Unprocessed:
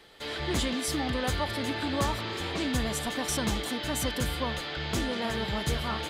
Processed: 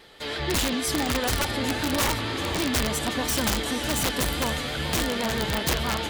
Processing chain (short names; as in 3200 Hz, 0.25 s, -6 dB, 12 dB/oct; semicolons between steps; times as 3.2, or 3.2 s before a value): diffused feedback echo 0.491 s, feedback 51%, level -10 dB; vibrato 6.2 Hz 45 cents; wrapped overs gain 21 dB; gain +4 dB